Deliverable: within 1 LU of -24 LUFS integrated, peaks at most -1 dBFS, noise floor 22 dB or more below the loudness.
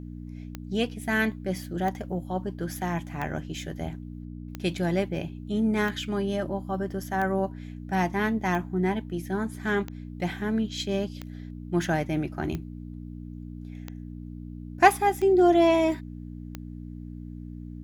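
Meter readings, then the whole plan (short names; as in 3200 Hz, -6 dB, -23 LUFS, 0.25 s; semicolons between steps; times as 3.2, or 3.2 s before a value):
clicks 13; hum 60 Hz; harmonics up to 300 Hz; hum level -37 dBFS; loudness -27.5 LUFS; peak -3.5 dBFS; loudness target -24.0 LUFS
-> de-click; de-hum 60 Hz, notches 5; gain +3.5 dB; limiter -1 dBFS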